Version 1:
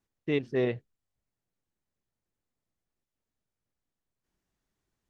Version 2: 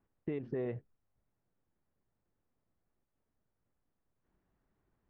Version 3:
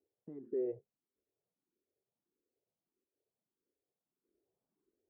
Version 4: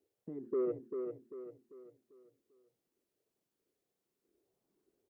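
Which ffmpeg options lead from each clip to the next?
-af "lowpass=1.5k,alimiter=level_in=4dB:limit=-24dB:level=0:latency=1:release=89,volume=-4dB,acompressor=threshold=-41dB:ratio=3,volume=5.5dB"
-filter_complex "[0:a]alimiter=level_in=4.5dB:limit=-24dB:level=0:latency=1:release=449,volume=-4.5dB,bandpass=f=400:t=q:w=2.8:csg=0,asplit=2[a][b];[b]afreqshift=1.6[c];[a][c]amix=inputs=2:normalize=1,volume=5dB"
-filter_complex "[0:a]asoftclip=type=tanh:threshold=-31dB,asplit=2[a][b];[b]aecho=0:1:394|788|1182|1576|1970:0.501|0.2|0.0802|0.0321|0.0128[c];[a][c]amix=inputs=2:normalize=0,volume=4.5dB"

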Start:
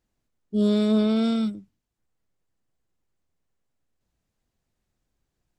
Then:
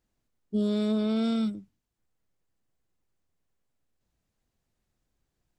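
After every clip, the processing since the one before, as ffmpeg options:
-af "acompressor=threshold=-22dB:ratio=6,volume=-1dB"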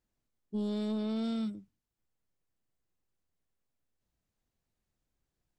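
-af "asoftclip=type=tanh:threshold=-20dB,volume=-5.5dB"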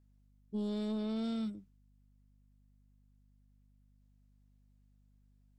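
-af "aeval=exprs='val(0)+0.000708*(sin(2*PI*50*n/s)+sin(2*PI*2*50*n/s)/2+sin(2*PI*3*50*n/s)/3+sin(2*PI*4*50*n/s)/4+sin(2*PI*5*50*n/s)/5)':c=same,volume=-2.5dB"

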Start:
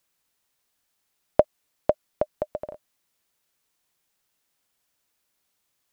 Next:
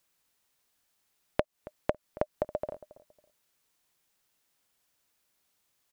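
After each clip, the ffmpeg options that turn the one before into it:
-filter_complex "[0:a]acompressor=threshold=-24dB:ratio=16,asplit=2[a][b];[b]adelay=276,lowpass=f=1.2k:p=1,volume=-17.5dB,asplit=2[c][d];[d]adelay=276,lowpass=f=1.2k:p=1,volume=0.27[e];[a][c][e]amix=inputs=3:normalize=0"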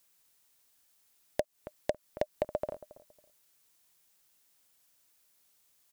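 -af "asoftclip=type=hard:threshold=-17dB,highshelf=f=4.8k:g=8"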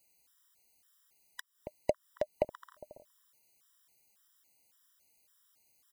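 -af "afftfilt=real='re*gt(sin(2*PI*1.8*pts/sr)*(1-2*mod(floor(b*sr/1024/990),2)),0)':imag='im*gt(sin(2*PI*1.8*pts/sr)*(1-2*mod(floor(b*sr/1024/990),2)),0)':win_size=1024:overlap=0.75,volume=1.5dB"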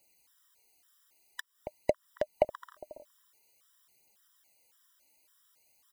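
-af "bass=f=250:g=-6,treble=f=4k:g=-3,aphaser=in_gain=1:out_gain=1:delay=3.6:decay=0.36:speed=0.49:type=triangular,volume=4dB"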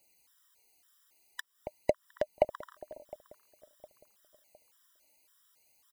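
-filter_complex "[0:a]asplit=2[a][b];[b]adelay=710,lowpass=f=1.5k:p=1,volume=-19.5dB,asplit=2[c][d];[d]adelay=710,lowpass=f=1.5k:p=1,volume=0.44,asplit=2[e][f];[f]adelay=710,lowpass=f=1.5k:p=1,volume=0.44[g];[a][c][e][g]amix=inputs=4:normalize=0"

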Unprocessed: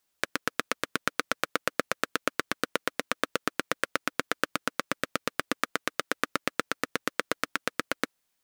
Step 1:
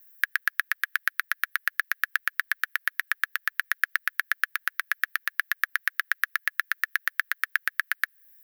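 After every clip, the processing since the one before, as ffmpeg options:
-filter_complex "[0:a]acrossover=split=3200|7200[a][b][c];[a]acompressor=threshold=-29dB:ratio=4[d];[b]acompressor=threshold=-40dB:ratio=4[e];[c]acompressor=threshold=-55dB:ratio=4[f];[d][e][f]amix=inputs=3:normalize=0,highpass=f=1.7k:t=q:w=8.1,aexciter=amount=10.7:drive=8.3:freq=11k,volume=-1.5dB"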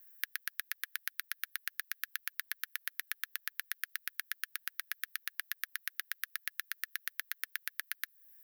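-filter_complex "[0:a]acrossover=split=310|3000[a][b][c];[b]acompressor=threshold=-40dB:ratio=6[d];[a][d][c]amix=inputs=3:normalize=0,volume=-3.5dB"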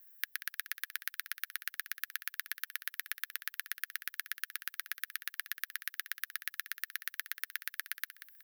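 -af "aecho=1:1:185|370|555:0.237|0.0688|0.0199"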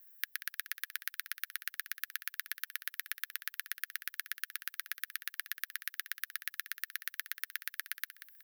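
-af "highpass=f=720:p=1"

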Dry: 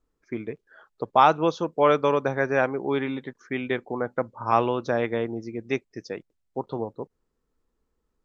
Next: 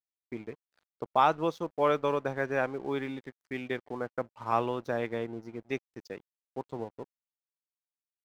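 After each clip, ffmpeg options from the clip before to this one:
-af "aeval=exprs='sgn(val(0))*max(abs(val(0))-0.00501,0)':c=same,volume=-6.5dB"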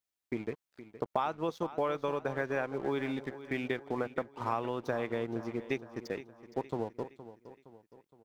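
-af "acompressor=threshold=-34dB:ratio=6,aecho=1:1:466|932|1398|1864:0.188|0.0904|0.0434|0.0208,volume=5dB"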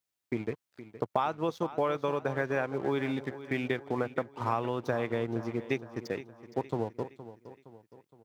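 -af "highpass=62,equalizer=f=110:t=o:w=0.82:g=4.5,volume=2.5dB"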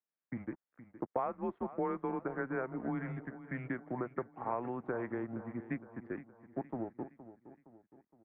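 -af "highpass=f=270:t=q:w=0.5412,highpass=f=270:t=q:w=1.307,lowpass=f=2.1k:t=q:w=0.5176,lowpass=f=2.1k:t=q:w=0.7071,lowpass=f=2.1k:t=q:w=1.932,afreqshift=-120,volume=-5.5dB"

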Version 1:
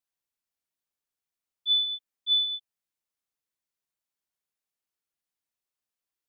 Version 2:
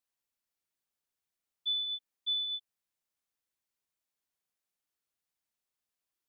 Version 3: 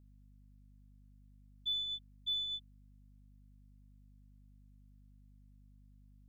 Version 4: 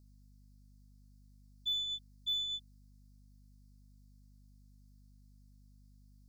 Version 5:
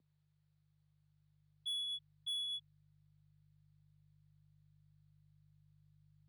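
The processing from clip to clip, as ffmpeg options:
-af "acompressor=threshold=-31dB:ratio=6"
-af "aeval=exprs='0.0473*(cos(1*acos(clip(val(0)/0.0473,-1,1)))-cos(1*PI/2))+0.00075*(cos(4*acos(clip(val(0)/0.0473,-1,1)))-cos(4*PI/2))':c=same,aeval=exprs='val(0)+0.00158*(sin(2*PI*50*n/s)+sin(2*PI*2*50*n/s)/2+sin(2*PI*3*50*n/s)/3+sin(2*PI*4*50*n/s)/4+sin(2*PI*5*50*n/s)/5)':c=same,volume=-3.5dB"
-af "highshelf=f=3.7k:t=q:w=3:g=8.5"
-af "asubboost=boost=6:cutoff=250,highpass=f=280:t=q:w=0.5412,highpass=f=280:t=q:w=1.307,lowpass=f=3.5k:t=q:w=0.5176,lowpass=f=3.5k:t=q:w=0.7071,lowpass=f=3.5k:t=q:w=1.932,afreqshift=-100,asoftclip=type=tanh:threshold=-39dB,volume=2.5dB"

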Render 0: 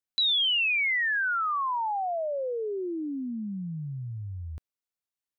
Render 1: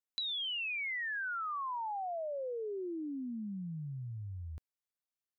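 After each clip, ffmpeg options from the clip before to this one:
-af "acompressor=threshold=-30dB:ratio=6,volume=-6dB"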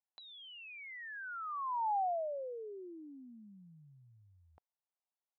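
-af "bandpass=f=800:t=q:w=2.9:csg=0,volume=5.5dB"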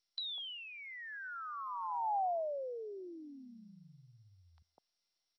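-filter_complex "[0:a]acrossover=split=170|1100[a][b][c];[a]adelay=40[d];[b]adelay=200[e];[d][e][c]amix=inputs=3:normalize=0,aexciter=amount=7.1:drive=3:freq=3.5k,volume=1.5dB" -ar 22050 -c:a mp2 -b:a 48k

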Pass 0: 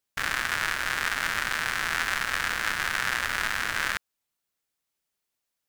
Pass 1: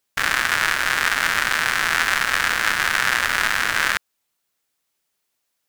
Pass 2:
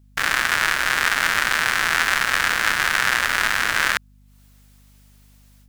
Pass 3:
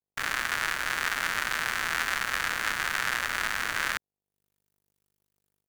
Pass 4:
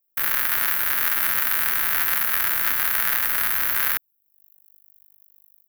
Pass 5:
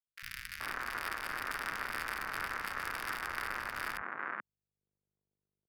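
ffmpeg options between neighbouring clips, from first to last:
-af "lowshelf=f=160:g=-5.5,volume=8dB"
-af "dynaudnorm=f=170:g=3:m=16.5dB,aeval=exprs='val(0)+0.00316*(sin(2*PI*50*n/s)+sin(2*PI*2*50*n/s)/2+sin(2*PI*3*50*n/s)/3+sin(2*PI*4*50*n/s)/4+sin(2*PI*5*50*n/s)/5)':c=same,volume=-1dB"
-filter_complex "[0:a]acrossover=split=160|1400|6700[a][b][c][d];[c]aeval=exprs='sgn(val(0))*max(abs(val(0))-0.02,0)':c=same[e];[a][b][e][d]amix=inputs=4:normalize=0,acrusher=bits=6:mix=0:aa=0.5,volume=-8.5dB"
-af "aexciter=amount=9.2:drive=8.7:freq=11k,volume=1dB"
-filter_complex "[0:a]adynamicsmooth=sensitivity=1.5:basefreq=910,acrossover=split=160|2000[a][b][c];[a]adelay=50[d];[b]adelay=430[e];[d][e][c]amix=inputs=3:normalize=0,volume=-7dB"

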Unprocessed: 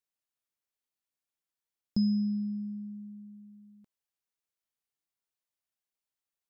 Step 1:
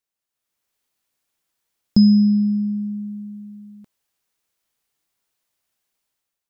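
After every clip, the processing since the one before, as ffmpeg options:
-af "dynaudnorm=f=140:g=7:m=10dB,volume=4.5dB"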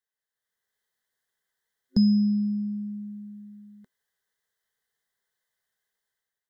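-filter_complex "[0:a]superequalizer=6b=0.316:7b=1.78:11b=3.16:12b=0.398:13b=1.41,acrossover=split=510|1200[a][b][c];[b]crystalizer=i=7.5:c=0[d];[a][d][c]amix=inputs=3:normalize=0,volume=-7.5dB"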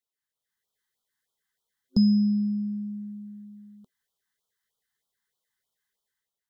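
-af "afftfilt=real='re*(1-between(b*sr/1024,490*pow(2100/490,0.5+0.5*sin(2*PI*3.2*pts/sr))/1.41,490*pow(2100/490,0.5+0.5*sin(2*PI*3.2*pts/sr))*1.41))':imag='im*(1-between(b*sr/1024,490*pow(2100/490,0.5+0.5*sin(2*PI*3.2*pts/sr))/1.41,490*pow(2100/490,0.5+0.5*sin(2*PI*3.2*pts/sr))*1.41))':win_size=1024:overlap=0.75"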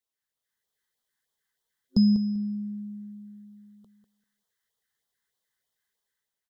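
-af "aecho=1:1:196|392|588:0.335|0.0603|0.0109"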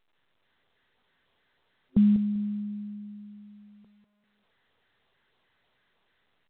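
-filter_complex "[0:a]asplit=2[a][b];[b]adynamicsmooth=sensitivity=7:basefreq=2.2k,volume=-3dB[c];[a][c]amix=inputs=2:normalize=0,volume=-5dB" -ar 8000 -c:a pcm_alaw

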